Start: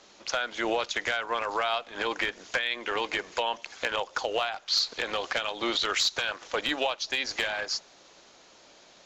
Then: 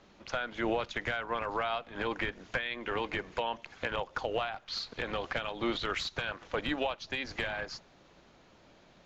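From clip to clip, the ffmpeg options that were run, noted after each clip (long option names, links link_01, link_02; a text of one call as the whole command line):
ffmpeg -i in.wav -af "bass=frequency=250:gain=14,treble=frequency=4000:gain=-13,volume=-4.5dB" out.wav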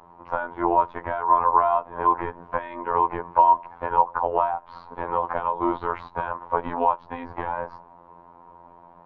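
ffmpeg -i in.wav -af "lowpass=frequency=970:width_type=q:width=10,afftfilt=real='hypot(re,im)*cos(PI*b)':imag='0':win_size=2048:overlap=0.75,volume=7.5dB" out.wav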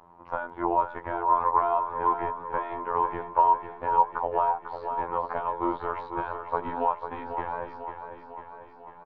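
ffmpeg -i in.wav -af "aecho=1:1:497|994|1491|1988|2485|2982|3479|3976:0.376|0.226|0.135|0.0812|0.0487|0.0292|0.0175|0.0105,volume=-4.5dB" out.wav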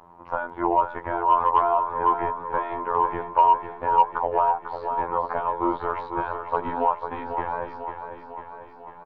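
ffmpeg -i in.wav -af "asoftclip=type=tanh:threshold=-9dB,volume=4dB" out.wav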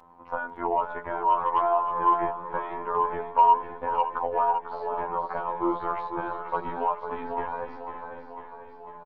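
ffmpeg -i in.wav -af "aecho=1:1:562:0.299,flanger=delay=3.9:depth=1.9:regen=27:speed=0.25:shape=sinusoidal" out.wav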